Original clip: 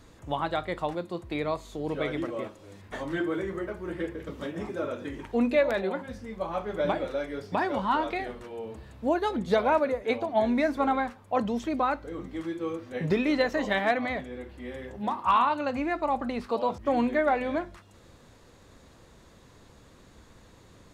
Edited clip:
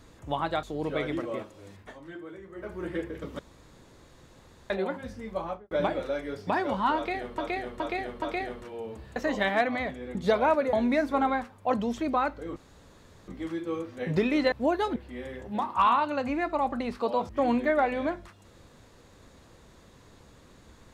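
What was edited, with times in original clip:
0:00.63–0:01.68: remove
0:02.79–0:03.78: duck −13 dB, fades 0.20 s
0:04.44–0:05.75: fill with room tone
0:06.45–0:06.76: fade out and dull
0:08.01–0:08.43: repeat, 4 plays
0:08.95–0:09.39: swap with 0:13.46–0:14.45
0:09.97–0:10.39: remove
0:12.22: splice in room tone 0.72 s

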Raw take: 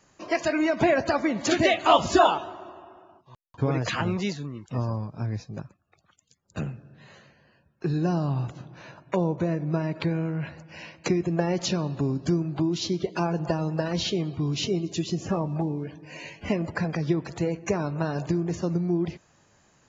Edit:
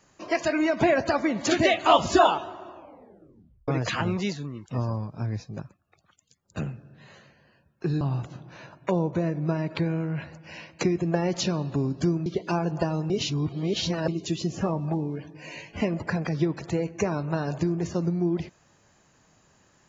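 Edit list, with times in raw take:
0:02.73: tape stop 0.95 s
0:08.01–0:08.26: remove
0:12.51–0:12.94: remove
0:13.78–0:14.76: reverse

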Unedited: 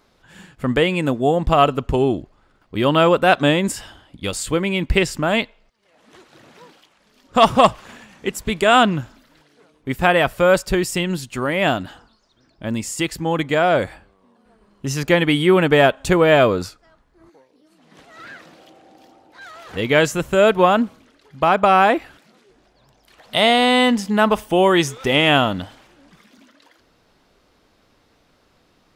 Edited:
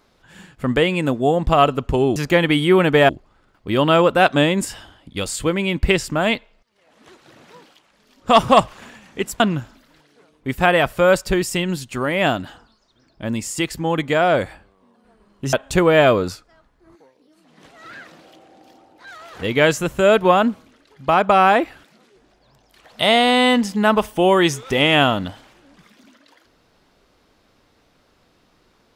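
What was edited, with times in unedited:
0:08.47–0:08.81: remove
0:14.94–0:15.87: move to 0:02.16

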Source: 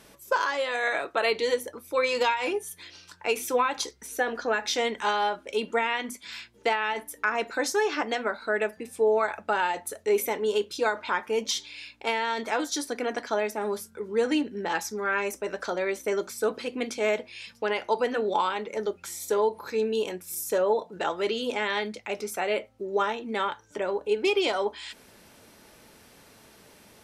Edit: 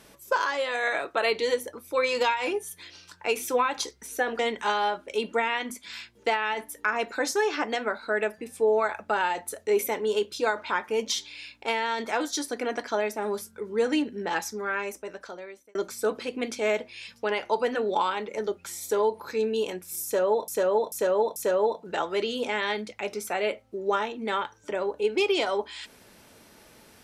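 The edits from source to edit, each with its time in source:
0:04.39–0:04.78: remove
0:14.78–0:16.14: fade out
0:20.43–0:20.87: repeat, 4 plays

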